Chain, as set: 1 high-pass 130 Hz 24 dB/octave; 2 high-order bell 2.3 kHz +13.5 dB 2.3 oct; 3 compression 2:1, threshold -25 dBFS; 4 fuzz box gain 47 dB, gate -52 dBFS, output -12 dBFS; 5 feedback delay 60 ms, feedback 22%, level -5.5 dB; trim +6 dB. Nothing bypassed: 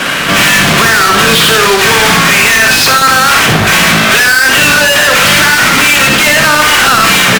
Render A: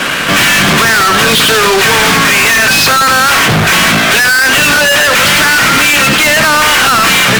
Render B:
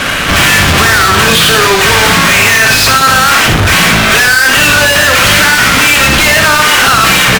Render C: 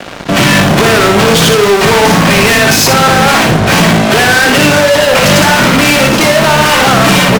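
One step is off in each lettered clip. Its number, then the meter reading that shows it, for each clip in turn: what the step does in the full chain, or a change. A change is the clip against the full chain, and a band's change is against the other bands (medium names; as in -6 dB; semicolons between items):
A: 5, crest factor change -2.5 dB; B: 1, 125 Hz band +3.0 dB; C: 2, 500 Hz band +7.5 dB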